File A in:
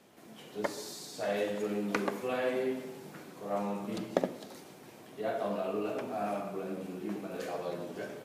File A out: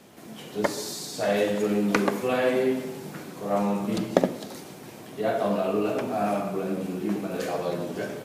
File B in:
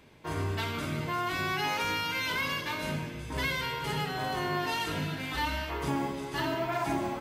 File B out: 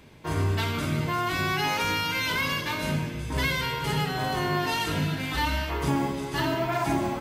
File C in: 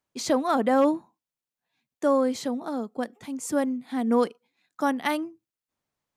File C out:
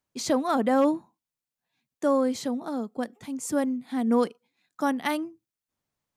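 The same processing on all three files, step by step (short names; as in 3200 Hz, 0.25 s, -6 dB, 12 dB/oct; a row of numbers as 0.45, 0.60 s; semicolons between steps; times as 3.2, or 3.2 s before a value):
tone controls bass +4 dB, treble +2 dB; match loudness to -27 LUFS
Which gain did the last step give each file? +8.0, +3.5, -1.5 dB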